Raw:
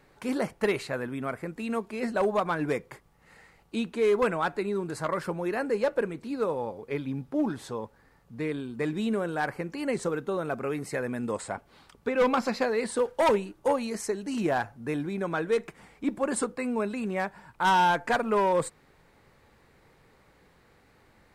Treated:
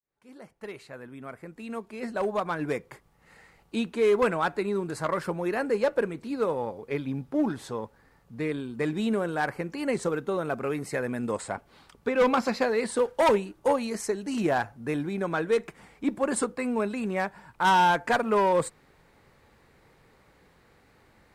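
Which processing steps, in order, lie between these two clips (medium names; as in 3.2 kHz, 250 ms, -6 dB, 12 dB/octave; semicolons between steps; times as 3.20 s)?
fade-in on the opening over 3.56 s; Chebyshev shaper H 7 -37 dB, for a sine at -17.5 dBFS; trim +1.5 dB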